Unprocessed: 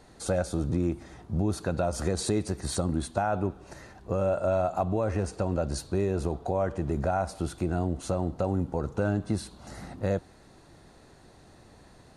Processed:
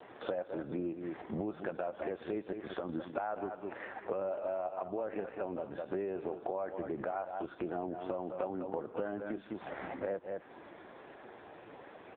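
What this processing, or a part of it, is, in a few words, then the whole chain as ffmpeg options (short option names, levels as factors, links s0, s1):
voicemail: -filter_complex "[0:a]asplit=3[s0][s1][s2];[s0]afade=t=out:st=0.76:d=0.02[s3];[s1]lowshelf=f=68:g=5,afade=t=in:st=0.76:d=0.02,afade=t=out:st=1.27:d=0.02[s4];[s2]afade=t=in:st=1.27:d=0.02[s5];[s3][s4][s5]amix=inputs=3:normalize=0,aecho=1:1:204:0.299,adynamicequalizer=threshold=0.00112:dfrequency=1700:dqfactor=6.1:tfrequency=1700:tqfactor=6.1:attack=5:release=100:ratio=0.375:range=1.5:mode=boostabove:tftype=bell,highpass=350,lowpass=2900,acompressor=threshold=0.00631:ratio=6,volume=3.16" -ar 8000 -c:a libopencore_amrnb -b:a 5150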